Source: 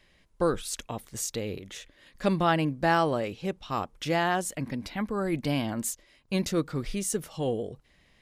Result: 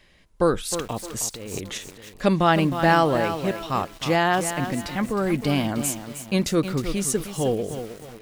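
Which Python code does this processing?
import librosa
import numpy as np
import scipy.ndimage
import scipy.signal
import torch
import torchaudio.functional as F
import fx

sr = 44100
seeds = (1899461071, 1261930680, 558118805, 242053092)

p1 = x + fx.echo_feedback(x, sr, ms=615, feedback_pct=27, wet_db=-21.0, dry=0)
p2 = fx.over_compress(p1, sr, threshold_db=-39.0, ratio=-1.0, at=(1.34, 1.78))
p3 = fx.echo_crushed(p2, sr, ms=312, feedback_pct=35, bits=7, wet_db=-9)
y = p3 * librosa.db_to_amplitude(5.5)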